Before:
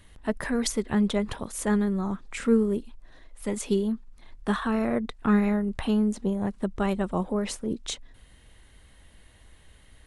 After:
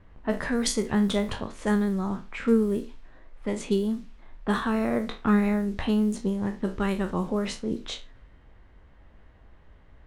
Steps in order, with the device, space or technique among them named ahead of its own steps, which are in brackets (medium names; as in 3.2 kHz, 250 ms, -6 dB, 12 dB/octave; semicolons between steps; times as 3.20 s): spectral sustain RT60 0.31 s; 6.19–7.29 s: peaking EQ 680 Hz -10 dB 0.39 oct; cassette deck with a dynamic noise filter (white noise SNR 30 dB; level-controlled noise filter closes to 1.2 kHz, open at -21 dBFS)